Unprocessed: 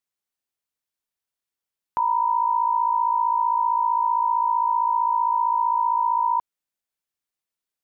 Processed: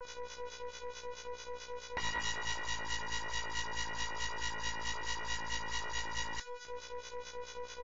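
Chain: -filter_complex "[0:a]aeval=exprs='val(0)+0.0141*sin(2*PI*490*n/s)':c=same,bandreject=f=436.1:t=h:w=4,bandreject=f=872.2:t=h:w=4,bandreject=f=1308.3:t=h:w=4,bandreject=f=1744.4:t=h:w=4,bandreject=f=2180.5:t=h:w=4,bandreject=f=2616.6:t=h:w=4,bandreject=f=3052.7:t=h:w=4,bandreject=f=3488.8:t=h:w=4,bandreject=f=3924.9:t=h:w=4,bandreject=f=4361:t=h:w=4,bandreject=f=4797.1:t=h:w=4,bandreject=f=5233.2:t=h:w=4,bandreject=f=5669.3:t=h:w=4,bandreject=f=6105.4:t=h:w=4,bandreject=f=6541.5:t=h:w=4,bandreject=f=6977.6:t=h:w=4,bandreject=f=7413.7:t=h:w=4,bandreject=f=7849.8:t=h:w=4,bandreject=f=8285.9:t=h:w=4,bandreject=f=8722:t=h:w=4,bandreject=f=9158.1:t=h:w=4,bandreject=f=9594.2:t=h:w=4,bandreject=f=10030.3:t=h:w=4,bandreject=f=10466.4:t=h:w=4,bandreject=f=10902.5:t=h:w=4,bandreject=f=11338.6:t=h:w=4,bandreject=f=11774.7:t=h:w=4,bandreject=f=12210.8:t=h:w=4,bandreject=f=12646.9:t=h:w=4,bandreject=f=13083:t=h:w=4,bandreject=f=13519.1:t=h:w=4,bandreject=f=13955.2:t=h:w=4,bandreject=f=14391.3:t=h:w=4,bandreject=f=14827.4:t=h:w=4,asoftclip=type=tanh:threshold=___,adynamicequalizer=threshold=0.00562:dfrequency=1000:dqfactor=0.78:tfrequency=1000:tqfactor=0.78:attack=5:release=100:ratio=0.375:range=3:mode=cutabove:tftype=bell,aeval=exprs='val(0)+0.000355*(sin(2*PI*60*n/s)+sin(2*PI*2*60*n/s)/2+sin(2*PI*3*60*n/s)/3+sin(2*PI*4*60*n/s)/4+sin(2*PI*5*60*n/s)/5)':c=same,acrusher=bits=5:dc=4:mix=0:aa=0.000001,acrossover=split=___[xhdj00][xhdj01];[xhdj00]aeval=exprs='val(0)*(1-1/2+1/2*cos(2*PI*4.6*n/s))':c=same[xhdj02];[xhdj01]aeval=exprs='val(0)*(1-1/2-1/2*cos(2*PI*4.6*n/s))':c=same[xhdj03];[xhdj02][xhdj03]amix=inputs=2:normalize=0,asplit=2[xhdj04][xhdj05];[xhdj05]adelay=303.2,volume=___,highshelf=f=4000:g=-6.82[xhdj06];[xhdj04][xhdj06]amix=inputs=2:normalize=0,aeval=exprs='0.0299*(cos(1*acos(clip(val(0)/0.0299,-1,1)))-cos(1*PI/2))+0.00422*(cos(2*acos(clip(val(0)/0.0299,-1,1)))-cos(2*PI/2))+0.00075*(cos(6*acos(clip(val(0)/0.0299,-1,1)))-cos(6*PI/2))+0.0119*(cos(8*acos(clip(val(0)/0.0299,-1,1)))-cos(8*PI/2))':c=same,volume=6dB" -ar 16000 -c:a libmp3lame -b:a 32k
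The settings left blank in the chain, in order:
-29dB, 1000, -28dB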